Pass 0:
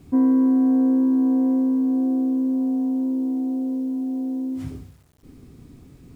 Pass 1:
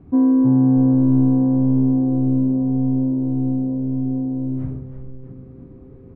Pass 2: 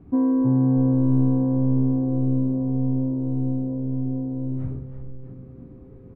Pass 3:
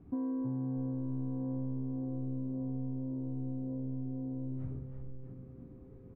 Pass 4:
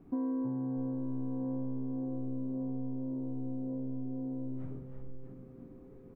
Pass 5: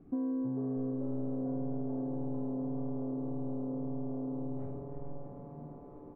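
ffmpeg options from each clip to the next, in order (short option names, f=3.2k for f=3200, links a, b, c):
-filter_complex "[0:a]lowpass=1.3k,aemphasis=mode=reproduction:type=50fm,asplit=2[a][b];[b]asplit=6[c][d][e][f][g][h];[c]adelay=318,afreqshift=-130,volume=-7dB[i];[d]adelay=636,afreqshift=-260,volume=-12.5dB[j];[e]adelay=954,afreqshift=-390,volume=-18dB[k];[f]adelay=1272,afreqshift=-520,volume=-23.5dB[l];[g]adelay=1590,afreqshift=-650,volume=-29.1dB[m];[h]adelay=1908,afreqshift=-780,volume=-34.6dB[n];[i][j][k][l][m][n]amix=inputs=6:normalize=0[o];[a][o]amix=inputs=2:normalize=0,volume=2dB"
-filter_complex "[0:a]asplit=2[a][b];[b]adelay=17,volume=-9.5dB[c];[a][c]amix=inputs=2:normalize=0,volume=-2.5dB"
-af "acompressor=threshold=-26dB:ratio=4,volume=-8dB"
-af "equalizer=f=82:t=o:w=1.4:g=-14,volume=3.5dB"
-filter_complex "[0:a]lowpass=f=1.4k:p=1,bandreject=f=950:w=9.1,asplit=7[a][b][c][d][e][f][g];[b]adelay=442,afreqshift=150,volume=-10.5dB[h];[c]adelay=884,afreqshift=300,volume=-16.2dB[i];[d]adelay=1326,afreqshift=450,volume=-21.9dB[j];[e]adelay=1768,afreqshift=600,volume=-27.5dB[k];[f]adelay=2210,afreqshift=750,volume=-33.2dB[l];[g]adelay=2652,afreqshift=900,volume=-38.9dB[m];[a][h][i][j][k][l][m]amix=inputs=7:normalize=0"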